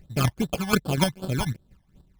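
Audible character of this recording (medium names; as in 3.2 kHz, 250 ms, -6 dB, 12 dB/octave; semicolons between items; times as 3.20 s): a buzz of ramps at a fixed pitch in blocks of 8 samples; chopped level 4.1 Hz, depth 65%, duty 25%; aliases and images of a low sample rate 1.9 kHz, jitter 0%; phasing stages 12, 2.6 Hz, lowest notch 410–2200 Hz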